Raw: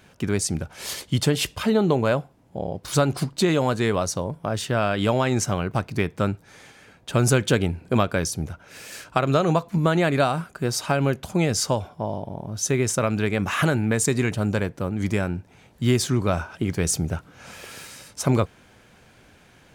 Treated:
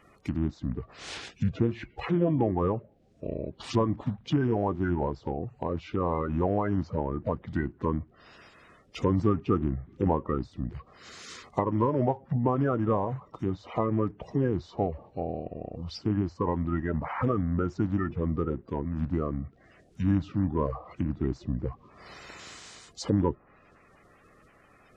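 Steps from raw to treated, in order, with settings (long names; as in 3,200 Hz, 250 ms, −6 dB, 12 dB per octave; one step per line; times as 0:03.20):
spectral magnitudes quantised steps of 30 dB
treble cut that deepens with the level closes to 1,500 Hz, closed at −22 dBFS
change of speed 0.791×
level −4.5 dB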